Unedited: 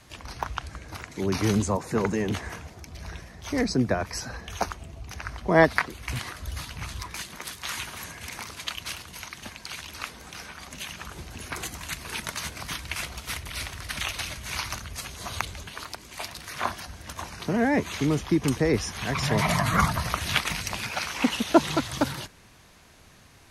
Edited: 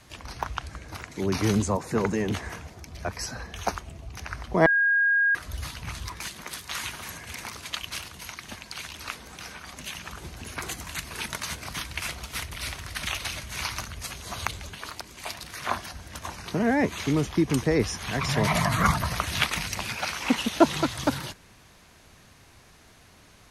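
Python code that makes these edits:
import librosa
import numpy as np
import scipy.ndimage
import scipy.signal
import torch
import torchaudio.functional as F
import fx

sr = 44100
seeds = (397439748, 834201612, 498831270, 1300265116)

y = fx.edit(x, sr, fx.cut(start_s=3.05, length_s=0.94),
    fx.bleep(start_s=5.6, length_s=0.69, hz=1630.0, db=-18.5), tone=tone)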